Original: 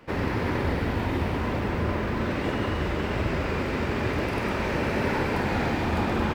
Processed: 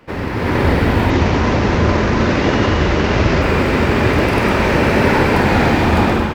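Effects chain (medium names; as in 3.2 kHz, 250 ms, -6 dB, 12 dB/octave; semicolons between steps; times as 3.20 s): 1.10–3.42 s: CVSD coder 32 kbps; level rider gain up to 9 dB; trim +4 dB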